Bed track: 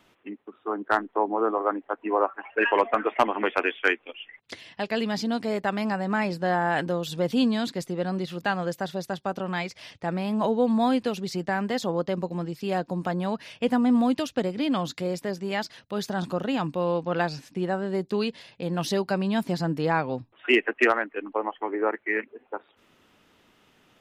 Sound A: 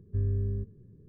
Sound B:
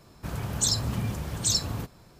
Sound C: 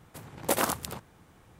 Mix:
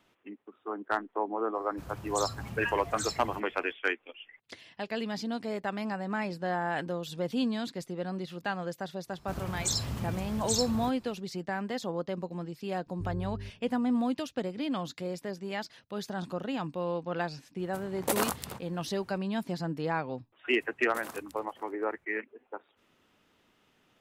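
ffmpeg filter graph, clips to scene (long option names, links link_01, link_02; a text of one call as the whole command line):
ffmpeg -i bed.wav -i cue0.wav -i cue1.wav -i cue2.wav -filter_complex "[2:a]asplit=2[link_01][link_02];[3:a]asplit=2[link_03][link_04];[0:a]volume=-7dB[link_05];[link_04]asplit=2[link_06][link_07];[link_07]adelay=524.8,volume=-12dB,highshelf=frequency=4000:gain=-11.8[link_08];[link_06][link_08]amix=inputs=2:normalize=0[link_09];[link_01]atrim=end=2.19,asetpts=PTS-STARTPTS,volume=-11.5dB,afade=type=in:duration=0.004:curve=hsin,afade=type=out:start_time=2.186:duration=0.004:curve=hsin,adelay=1540[link_10];[link_02]atrim=end=2.19,asetpts=PTS-STARTPTS,volume=-5.5dB,afade=type=in:duration=0.1,afade=type=out:start_time=2.09:duration=0.1,adelay=9040[link_11];[1:a]atrim=end=1.08,asetpts=PTS-STARTPTS,volume=-9dB,afade=type=in:duration=0.004:curve=hsin,afade=type=out:start_time=1.076:duration=0.004:curve=hsin,adelay=12860[link_12];[link_03]atrim=end=1.59,asetpts=PTS-STARTPTS,volume=-2.5dB,afade=type=in:duration=0.004:curve=hsin,afade=type=out:start_time=1.586:duration=0.004:curve=hsin,adelay=17590[link_13];[link_09]atrim=end=1.59,asetpts=PTS-STARTPTS,volume=-17dB,afade=type=in:duration=0.004:curve=hsin,afade=type=out:start_time=1.586:duration=0.004:curve=hsin,adelay=20460[link_14];[link_05][link_10][link_11][link_12][link_13][link_14]amix=inputs=6:normalize=0" out.wav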